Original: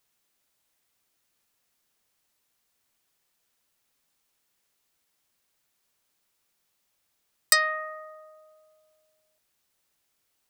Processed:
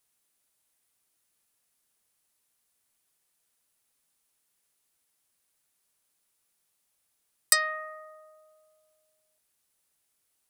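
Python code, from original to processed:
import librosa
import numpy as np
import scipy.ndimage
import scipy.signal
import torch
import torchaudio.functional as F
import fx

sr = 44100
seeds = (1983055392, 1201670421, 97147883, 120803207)

y = fx.peak_eq(x, sr, hz=10000.0, db=9.0, octaves=0.67)
y = y * 10.0 ** (-4.0 / 20.0)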